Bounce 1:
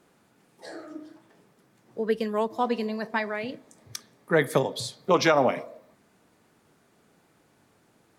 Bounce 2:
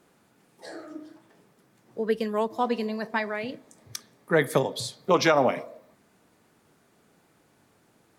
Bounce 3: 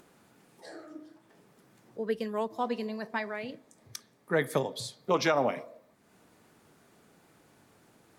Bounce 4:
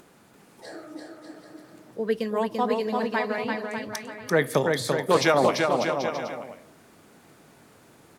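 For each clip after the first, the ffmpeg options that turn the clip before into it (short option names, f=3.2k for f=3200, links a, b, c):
-af "highshelf=f=11k:g=3"
-af "acompressor=mode=upward:threshold=-47dB:ratio=2.5,volume=-5.5dB"
-af "aecho=1:1:340|595|786.2|929.7|1037:0.631|0.398|0.251|0.158|0.1,volume=5.5dB"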